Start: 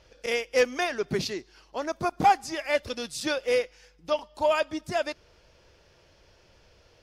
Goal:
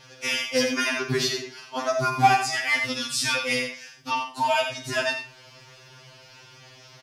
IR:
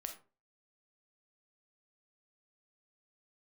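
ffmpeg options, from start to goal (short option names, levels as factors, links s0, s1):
-filter_complex "[0:a]highpass=52,equalizer=f=480:t=o:w=1:g=-11.5,asplit=2[s0][s1];[s1]acompressor=threshold=0.00631:ratio=6,volume=1.41[s2];[s0][s2]amix=inputs=2:normalize=0,asplit=2[s3][s4];[s4]adelay=48,volume=0.251[s5];[s3][s5]amix=inputs=2:normalize=0,asplit=2[s6][s7];[s7]adelay=87.46,volume=0.447,highshelf=f=4000:g=-1.97[s8];[s6][s8]amix=inputs=2:normalize=0,asplit=2[s9][s10];[1:a]atrim=start_sample=2205[s11];[s10][s11]afir=irnorm=-1:irlink=0,volume=2[s12];[s9][s12]amix=inputs=2:normalize=0,afftfilt=real='re*2.45*eq(mod(b,6),0)':imag='im*2.45*eq(mod(b,6),0)':win_size=2048:overlap=0.75"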